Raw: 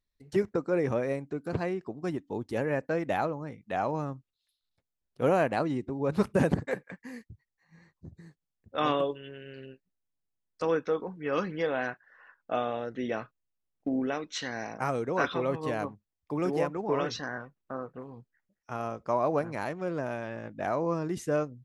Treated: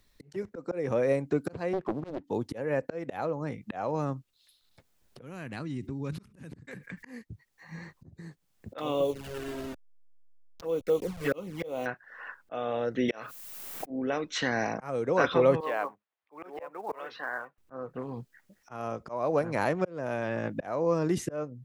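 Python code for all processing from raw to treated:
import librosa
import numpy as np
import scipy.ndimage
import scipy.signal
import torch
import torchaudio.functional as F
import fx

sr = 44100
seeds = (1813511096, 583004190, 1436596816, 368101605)

y = fx.chain(x, sr, fx.lowpass(hz=1700.0, slope=12),
    fx.leveller(passes=1),
    fx.doppler_dist(depth_ms=0.9), at=(1.73, 2.24))
y = fx.chain(y, sr, fx.tone_stack(knobs='6-0-2'),
    fx.env_flatten(amount_pct=50), at=(5.21, 7.03))
y = fx.chain(y, sr, fx.delta_hold(step_db=-42.0),
    fx.env_flanger(rest_ms=5.2, full_db=-26.0), at=(8.78, 11.86))
y = fx.chain(y, sr, fx.riaa(side='recording'),
    fx.env_flatten(amount_pct=70), at=(13.08, 13.9))
y = fx.chain(y, sr, fx.highpass(hz=720.0, slope=12),
    fx.air_absorb(metres=400.0),
    fx.quant_float(bits=4), at=(15.6, 17.58))
y = fx.dynamic_eq(y, sr, hz=510.0, q=4.8, threshold_db=-42.0, ratio=4.0, max_db=6)
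y = fx.auto_swell(y, sr, attack_ms=656.0)
y = fx.band_squash(y, sr, depth_pct=40)
y = y * librosa.db_to_amplitude(8.5)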